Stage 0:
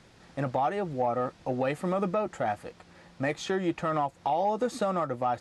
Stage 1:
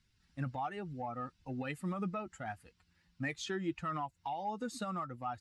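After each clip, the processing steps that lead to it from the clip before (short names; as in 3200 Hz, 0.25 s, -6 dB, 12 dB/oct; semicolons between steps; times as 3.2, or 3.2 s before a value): per-bin expansion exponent 1.5; bell 560 Hz -13 dB 0.98 oct; gain -2.5 dB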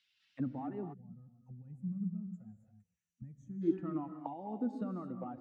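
auto-wah 280–3200 Hz, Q 2.7, down, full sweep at -38.5 dBFS; non-linear reverb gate 0.3 s rising, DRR 7 dB; spectral gain 0.94–3.62, 230–5700 Hz -28 dB; gain +8.5 dB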